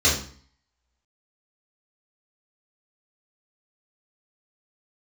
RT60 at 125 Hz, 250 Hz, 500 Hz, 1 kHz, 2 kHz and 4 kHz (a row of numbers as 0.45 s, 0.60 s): 0.60 s, 0.55 s, 0.45 s, 0.50 s, 0.45 s, 0.45 s